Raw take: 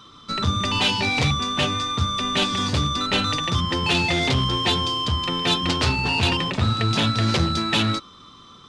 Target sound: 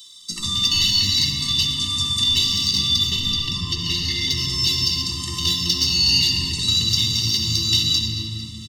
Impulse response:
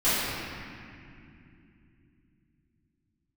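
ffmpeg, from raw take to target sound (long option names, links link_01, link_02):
-filter_complex "[0:a]aexciter=amount=5.5:drive=5.7:freq=4400,afwtdn=0.0794,aexciter=amount=9.3:drive=8.9:freq=2100,flanger=delay=5.6:depth=1:regen=66:speed=0.35:shape=triangular,acrossover=split=100|340|1700|3900[link_01][link_02][link_03][link_04][link_05];[link_01]acompressor=threshold=-35dB:ratio=4[link_06];[link_02]acompressor=threshold=-38dB:ratio=4[link_07];[link_03]acompressor=threshold=-41dB:ratio=4[link_08];[link_04]acompressor=threshold=-23dB:ratio=4[link_09];[link_05]acompressor=threshold=-24dB:ratio=4[link_10];[link_06][link_07][link_08][link_09][link_10]amix=inputs=5:normalize=0,asettb=1/sr,asplit=3[link_11][link_12][link_13];[link_11]atrim=end=3.104[link_14];[link_12]atrim=start=3.1:end=4.31,asetpts=PTS-STARTPTS,afade=type=in:duration=0.004:curve=qsin,afade=type=out:start_time=1.206:duration=0.004:curve=qsin,aemphasis=mode=reproduction:type=cd[link_15];[link_13]atrim=start=4.306[link_16];[link_14][link_15]acrossfade=duration=0.004:curve1=hsin:curve2=qsin[link_17];[link_17][link_16]acrossfade=duration=0.004:curve1=qsin:curve2=hsin,aecho=1:1:224|448|672|896|1120:0.168|0.094|0.0526|0.0295|0.0165,asplit=2[link_18][link_19];[1:a]atrim=start_sample=2205,lowshelf=frequency=210:gain=6,adelay=62[link_20];[link_19][link_20]afir=irnorm=-1:irlink=0,volume=-19dB[link_21];[link_18][link_21]amix=inputs=2:normalize=0,afftfilt=real='re*eq(mod(floor(b*sr/1024/440),2),0)':imag='im*eq(mod(floor(b*sr/1024/440),2),0)':win_size=1024:overlap=0.75"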